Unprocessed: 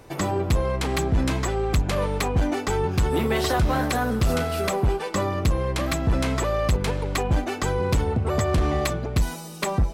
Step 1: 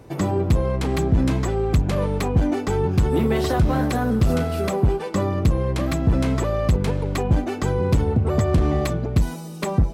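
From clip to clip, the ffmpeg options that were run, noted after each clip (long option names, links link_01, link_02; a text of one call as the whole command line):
ffmpeg -i in.wav -af "equalizer=frequency=160:width=0.3:gain=9.5,volume=-4dB" out.wav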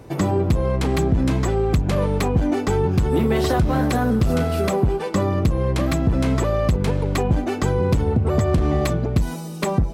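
ffmpeg -i in.wav -af "acompressor=threshold=-17dB:ratio=6,volume=3dB" out.wav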